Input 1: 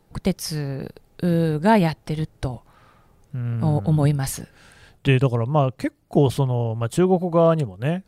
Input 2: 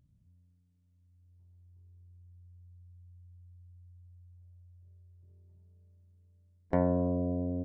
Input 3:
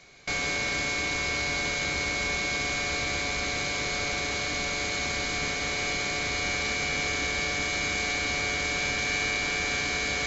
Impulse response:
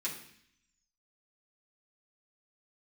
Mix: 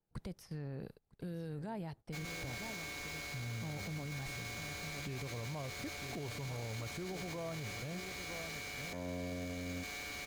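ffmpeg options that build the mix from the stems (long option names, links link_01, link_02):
-filter_complex "[0:a]acrossover=split=1400|3800[link_01][link_02][link_03];[link_01]acompressor=threshold=-22dB:ratio=4[link_04];[link_02]acompressor=threshold=-46dB:ratio=4[link_05];[link_03]acompressor=threshold=-48dB:ratio=4[link_06];[link_04][link_05][link_06]amix=inputs=3:normalize=0,adynamicequalizer=threshold=0.00447:dfrequency=3500:dqfactor=0.7:tfrequency=3500:tqfactor=0.7:attack=5:release=100:ratio=0.375:range=2:mode=cutabove:tftype=highshelf,volume=-12.5dB,asplit=2[link_07][link_08];[link_08]volume=-12.5dB[link_09];[1:a]adelay=2200,volume=-4.5dB[link_10];[2:a]acrusher=bits=4:mix=0:aa=0.5,adelay=1850,volume=-16dB[link_11];[link_09]aecho=0:1:956:1[link_12];[link_07][link_10][link_11][link_12]amix=inputs=4:normalize=0,agate=range=-16dB:threshold=-51dB:ratio=16:detection=peak,alimiter=level_in=10dB:limit=-24dB:level=0:latency=1:release=11,volume=-10dB"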